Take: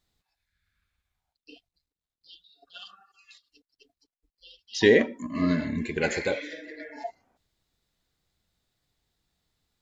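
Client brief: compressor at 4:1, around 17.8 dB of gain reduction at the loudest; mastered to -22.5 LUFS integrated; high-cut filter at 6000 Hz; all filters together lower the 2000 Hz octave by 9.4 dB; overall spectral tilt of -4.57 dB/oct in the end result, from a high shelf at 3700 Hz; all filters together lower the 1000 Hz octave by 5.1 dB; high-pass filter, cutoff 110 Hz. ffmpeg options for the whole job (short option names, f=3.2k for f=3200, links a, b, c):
-af "highpass=110,lowpass=6k,equalizer=f=1k:t=o:g=-5,equalizer=f=2k:t=o:g=-8,highshelf=f=3.7k:g=-6,acompressor=threshold=-37dB:ratio=4,volume=19dB"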